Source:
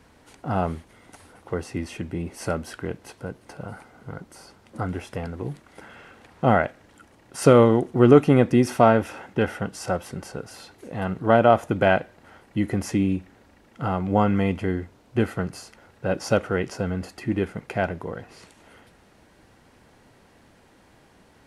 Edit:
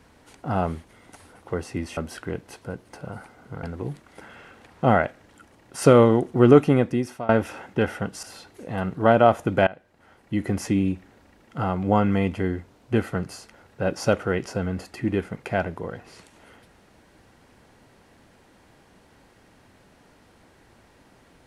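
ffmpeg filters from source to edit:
-filter_complex "[0:a]asplit=6[s0][s1][s2][s3][s4][s5];[s0]atrim=end=1.972[s6];[s1]atrim=start=2.528:end=4.192[s7];[s2]atrim=start=5.228:end=8.89,asetpts=PTS-STARTPTS,afade=t=out:st=2.952:d=0.71:silence=0.0749894[s8];[s3]atrim=start=8.89:end=9.832,asetpts=PTS-STARTPTS,afade=t=in:d=0.004:c=hsin:silence=0.0749894[s9];[s4]atrim=start=10.468:end=11.91,asetpts=PTS-STARTPTS,afade=t=out:st=1.438:d=0.004:c=hsin:silence=0.0630957[s10];[s5]atrim=start=11.91,asetpts=PTS-STARTPTS,afade=t=in:d=0.84:silence=0.0630957[s11];[s6][s7]acrossfade=d=0.004:c1=hsin:c2=hsin[s12];[s8][s9]concat=n=2:v=0:a=1[s13];[s12][s13]acrossfade=d=0.004:c1=hsin:c2=hsin[s14];[s10][s11]concat=n=2:v=0:a=1[s15];[s14][s15]acrossfade=d=0.004:c1=hsin:c2=hsin"

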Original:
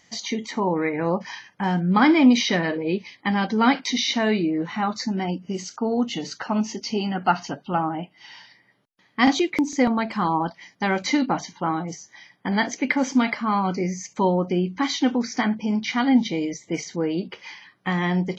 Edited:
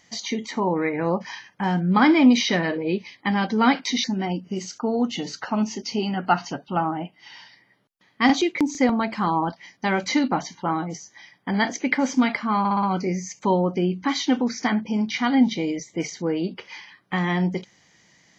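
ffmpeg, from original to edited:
-filter_complex "[0:a]asplit=6[s0][s1][s2][s3][s4][s5];[s0]atrim=end=4.042[s6];[s1]atrim=start=5.018:end=13.632[s7];[s2]atrim=start=13.568:end=13.632[s8];[s3]atrim=start=13.568:end=13.632[s9];[s4]atrim=start=13.568:end=13.632[s10];[s5]atrim=start=13.568[s11];[s6][s7]acrossfade=d=0.004:c1=hsin:c2=hsin[s12];[s12][s8]acrossfade=d=0.004:c1=hsin:c2=hsin[s13];[s13][s9]acrossfade=d=0.004:c1=hsin:c2=hsin[s14];[s14][s10]acrossfade=d=0.004:c1=hsin:c2=hsin[s15];[s15][s11]acrossfade=d=0.004:c1=hsin:c2=hsin"

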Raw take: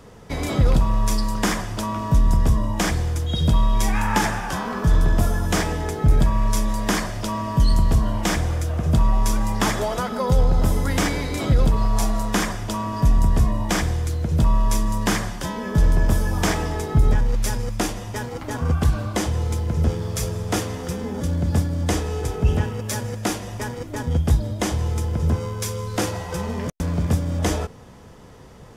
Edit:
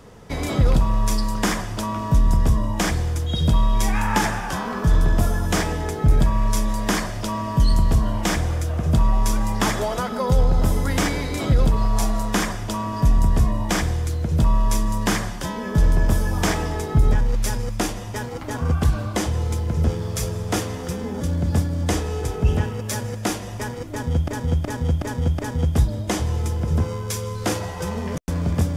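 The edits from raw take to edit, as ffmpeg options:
-filter_complex "[0:a]asplit=5[s0][s1][s2][s3][s4];[s0]atrim=end=24.282[s5];[s1]atrim=start=23.908:end=24.282[s6];[s2]atrim=start=23.908:end=24.282[s7];[s3]atrim=start=23.908:end=24.282[s8];[s4]atrim=start=23.908[s9];[s5][s6]acrossfade=d=0.004:c1=hsin:c2=hsin[s10];[s10][s7]acrossfade=d=0.004:c1=hsin:c2=hsin[s11];[s11][s8]acrossfade=d=0.004:c1=hsin:c2=hsin[s12];[s12][s9]acrossfade=d=0.004:c1=hsin:c2=hsin"

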